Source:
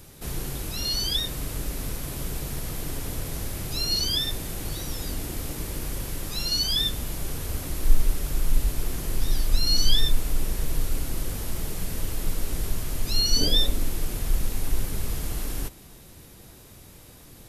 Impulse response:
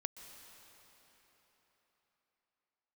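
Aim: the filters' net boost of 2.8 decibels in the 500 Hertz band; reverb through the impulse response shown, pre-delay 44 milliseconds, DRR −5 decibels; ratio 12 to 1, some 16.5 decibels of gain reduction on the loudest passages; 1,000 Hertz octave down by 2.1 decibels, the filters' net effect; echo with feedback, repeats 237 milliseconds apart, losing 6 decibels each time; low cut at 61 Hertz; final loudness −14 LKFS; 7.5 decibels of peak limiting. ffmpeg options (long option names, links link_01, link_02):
-filter_complex "[0:a]highpass=61,equalizer=frequency=500:width_type=o:gain=4.5,equalizer=frequency=1000:width_type=o:gain=-4.5,acompressor=threshold=-37dB:ratio=12,alimiter=level_in=11.5dB:limit=-24dB:level=0:latency=1,volume=-11.5dB,aecho=1:1:237|474|711|948|1185|1422:0.501|0.251|0.125|0.0626|0.0313|0.0157,asplit=2[link_01][link_02];[1:a]atrim=start_sample=2205,adelay=44[link_03];[link_02][link_03]afir=irnorm=-1:irlink=0,volume=7dB[link_04];[link_01][link_04]amix=inputs=2:normalize=0,volume=22.5dB"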